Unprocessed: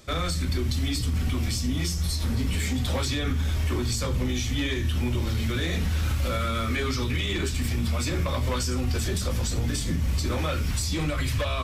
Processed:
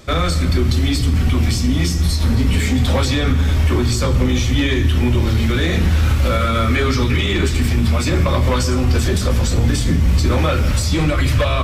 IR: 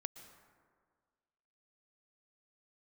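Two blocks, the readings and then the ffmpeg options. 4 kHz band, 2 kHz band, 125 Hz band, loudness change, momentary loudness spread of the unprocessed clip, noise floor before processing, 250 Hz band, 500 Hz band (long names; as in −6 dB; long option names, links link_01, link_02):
+7.5 dB, +9.5 dB, +10.5 dB, +10.0 dB, 1 LU, −28 dBFS, +11.0 dB, +11.0 dB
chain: -filter_complex "[0:a]asplit=2[link_01][link_02];[1:a]atrim=start_sample=2205,highshelf=frequency=5000:gain=-11.5[link_03];[link_02][link_03]afir=irnorm=-1:irlink=0,volume=11dB[link_04];[link_01][link_04]amix=inputs=2:normalize=0"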